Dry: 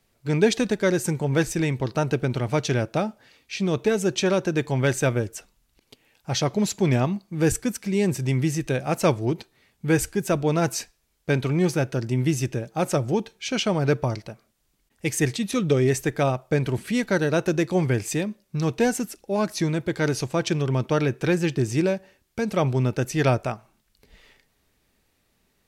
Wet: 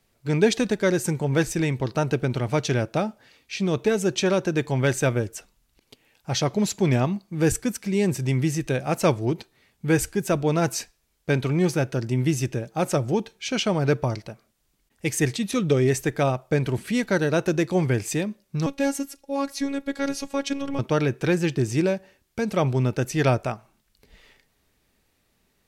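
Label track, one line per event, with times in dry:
18.660000	20.790000	robot voice 277 Hz

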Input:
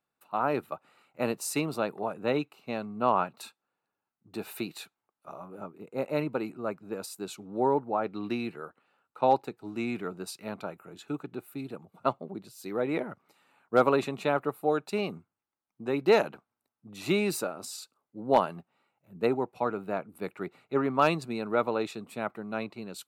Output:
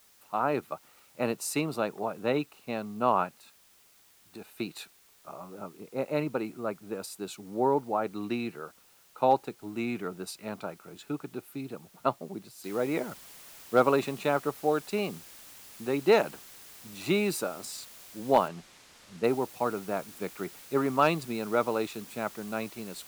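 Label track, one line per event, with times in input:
3.290000	4.600000	level held to a coarse grid steps of 14 dB
12.640000	12.640000	noise floor step -61 dB -50 dB
18.480000	19.240000	distance through air 63 m

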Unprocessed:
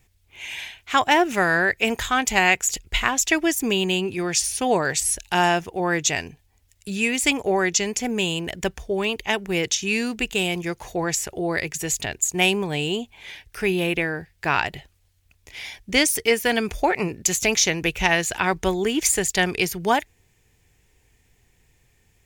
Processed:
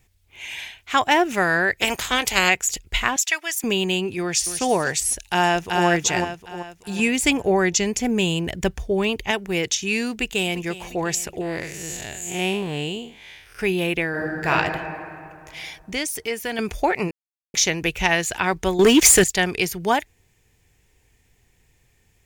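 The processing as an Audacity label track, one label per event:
1.800000	2.480000	spectral peaks clipped ceiling under each frame's peak by 17 dB
3.160000	3.640000	high-pass 1.1 kHz
4.210000	4.630000	echo throw 250 ms, feedback 20%, level -11 dB
5.160000	5.860000	echo throw 380 ms, feedback 40%, level -2.5 dB
6.990000	9.310000	bass shelf 270 Hz +8 dB
10.110000	10.660000	echo throw 350 ms, feedback 65%, level -15.5 dB
11.410000	13.590000	spectral blur width 168 ms
14.090000	14.490000	reverb throw, RT60 2.5 s, DRR -5.5 dB
15.750000	16.590000	compression 1.5:1, threshold -35 dBFS
17.110000	17.540000	mute
18.790000	19.240000	waveshaping leveller passes 3

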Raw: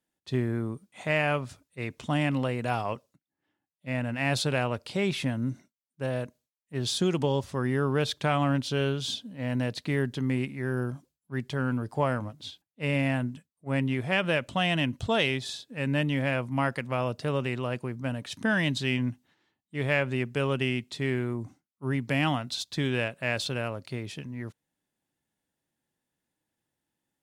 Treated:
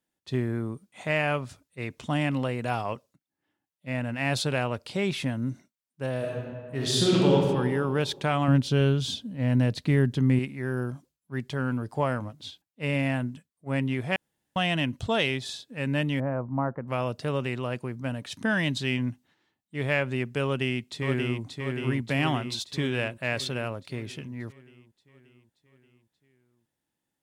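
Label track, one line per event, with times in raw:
6.180000	7.320000	reverb throw, RT60 1.9 s, DRR -5 dB
8.480000	10.390000	bass shelf 250 Hz +10 dB
14.160000	14.560000	room tone
16.200000	16.880000	low-pass 1.2 kHz 24 dB/octave
20.440000	21.430000	echo throw 580 ms, feedback 60%, level -4 dB

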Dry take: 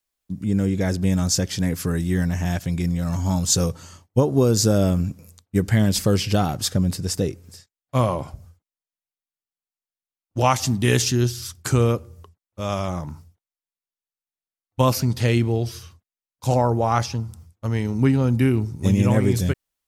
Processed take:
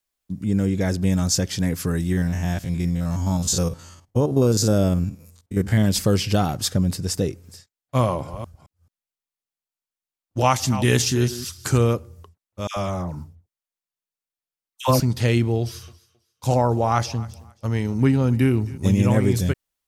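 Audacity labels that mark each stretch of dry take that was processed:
2.120000	5.840000	spectrogram pixelated in time every 50 ms
8.010000	11.950000	chunks repeated in reverse 218 ms, level -12.5 dB
12.670000	15.000000	phase dispersion lows, late by 96 ms, half as late at 1.1 kHz
15.610000	18.780000	thinning echo 268 ms, feedback 24%, high-pass 190 Hz, level -20.5 dB

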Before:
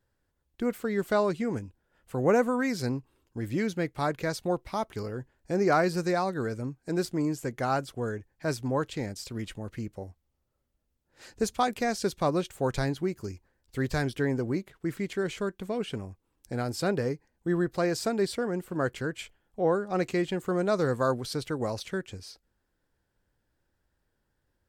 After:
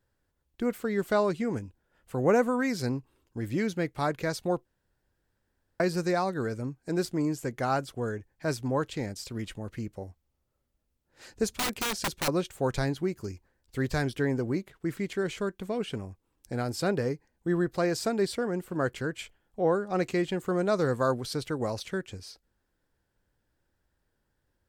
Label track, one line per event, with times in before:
4.650000	5.800000	room tone
11.590000	12.280000	integer overflow gain 23.5 dB

